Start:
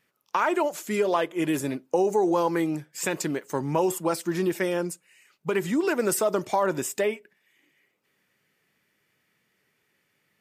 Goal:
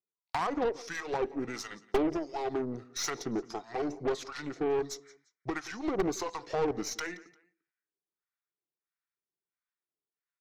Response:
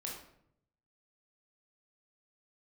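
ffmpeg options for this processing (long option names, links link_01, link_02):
-filter_complex "[0:a]agate=range=-28dB:threshold=-54dB:ratio=16:detection=peak,acompressor=threshold=-31dB:ratio=2,highpass=290,equalizer=frequency=320:width_type=q:width=4:gain=-10,equalizer=frequency=510:width_type=q:width=4:gain=5,equalizer=frequency=720:width_type=q:width=4:gain=-4,equalizer=frequency=2000:width_type=q:width=4:gain=-5,equalizer=frequency=3600:width_type=q:width=4:gain=-7,equalizer=frequency=5700:width_type=q:width=4:gain=-3,lowpass=frequency=7100:width=0.5412,lowpass=frequency=7100:width=1.3066,asetrate=35002,aresample=44100,atempo=1.25992,acrossover=split=800[link_01][link_02];[link_01]aeval=exprs='val(0)*(1-1/2+1/2*cos(2*PI*1.5*n/s))':channel_layout=same[link_03];[link_02]aeval=exprs='val(0)*(1-1/2-1/2*cos(2*PI*1.5*n/s))':channel_layout=same[link_04];[link_03][link_04]amix=inputs=2:normalize=0,aeval=exprs='0.0944*(cos(1*acos(clip(val(0)/0.0944,-1,1)))-cos(1*PI/2))+0.0188*(cos(5*acos(clip(val(0)/0.0944,-1,1)))-cos(5*PI/2))':channel_layout=same,aecho=1:1:174|348:0.0944|0.0302,asplit=2[link_05][link_06];[1:a]atrim=start_sample=2205,atrim=end_sample=3528[link_07];[link_06][link_07]afir=irnorm=-1:irlink=0,volume=-20.5dB[link_08];[link_05][link_08]amix=inputs=2:normalize=0,aeval=exprs='0.1*(cos(1*acos(clip(val(0)/0.1,-1,1)))-cos(1*PI/2))+0.0447*(cos(2*acos(clip(val(0)/0.1,-1,1)))-cos(2*PI/2))+0.00891*(cos(8*acos(clip(val(0)/0.1,-1,1)))-cos(8*PI/2))':channel_layout=same"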